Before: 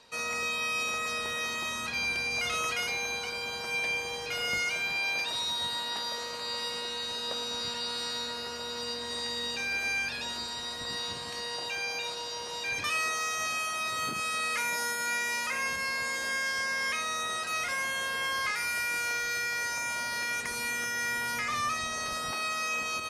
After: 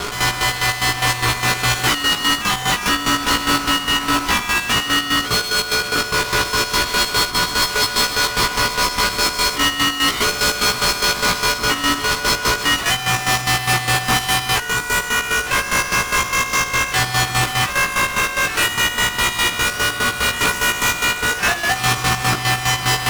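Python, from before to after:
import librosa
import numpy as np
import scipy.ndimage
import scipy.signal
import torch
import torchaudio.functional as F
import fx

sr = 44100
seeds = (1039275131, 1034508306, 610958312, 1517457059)

y = scipy.signal.sosfilt(scipy.signal.butter(2, 280.0, 'highpass', fs=sr, output='sos'), x)
y = fx.band_shelf(y, sr, hz=690.0, db=13.0, octaves=1.1)
y = fx.over_compress(y, sr, threshold_db=-33.0, ratio=-0.5)
y = y * np.sin(2.0 * np.pi * 510.0 * np.arange(len(y)) / sr)
y = fx.fuzz(y, sr, gain_db=50.0, gate_db=-51.0)
y = fx.chopper(y, sr, hz=4.9, depth_pct=65, duty_pct=45)
y = y + 10.0 ** (-35.0 / 20.0) * np.sin(2.0 * np.pi * 730.0 * np.arange(len(y)) / sr)
y = fx.doubler(y, sr, ms=17.0, db=-2.5)
y = y * 10.0 ** (-2.0 / 20.0)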